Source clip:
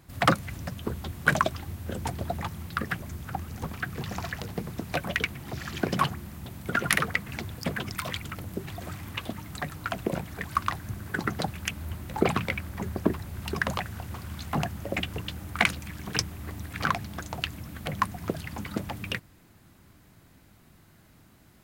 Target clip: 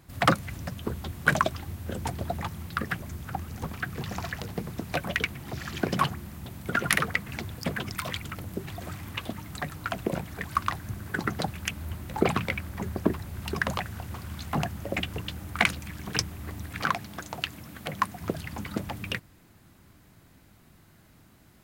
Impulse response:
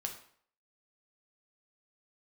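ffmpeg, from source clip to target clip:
-filter_complex "[0:a]asettb=1/sr,asplit=3[link_01][link_02][link_03];[link_01]atrim=end=16.804[link_04];[link_02]atrim=start=16.8:end=18.21,asetpts=PTS-STARTPTS,afade=type=in:duration=0.004:curve=qsin,afade=type=out:start_time=1.406:duration=0.004:curve=qsin,highpass=frequency=180:poles=1[link_05];[link_03]atrim=start=18.206[link_06];[link_04][link_05]acrossfade=duration=0.004:curve1=hsin:curve2=qsin[link_07];[link_07][link_06]acrossfade=duration=0.004:curve1=qsin:curve2=hsin"

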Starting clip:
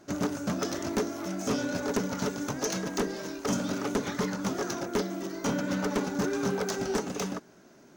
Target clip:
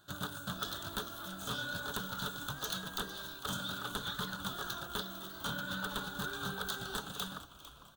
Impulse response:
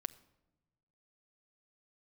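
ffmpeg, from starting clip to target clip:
-filter_complex "[0:a]firequalizer=gain_entry='entry(130,0);entry(260,-15);entry(1500,6);entry(2100,-17);entry(3500,14);entry(5400,-11);entry(8400,5);entry(16000,11)':delay=0.05:min_phase=1,asplit=2[link_01][link_02];[link_02]asplit=4[link_03][link_04][link_05][link_06];[link_03]adelay=451,afreqshift=-130,volume=-14dB[link_07];[link_04]adelay=902,afreqshift=-260,volume=-21.7dB[link_08];[link_05]adelay=1353,afreqshift=-390,volume=-29.5dB[link_09];[link_06]adelay=1804,afreqshift=-520,volume=-37.2dB[link_10];[link_07][link_08][link_09][link_10]amix=inputs=4:normalize=0[link_11];[link_01][link_11]amix=inputs=2:normalize=0,volume=-5dB"

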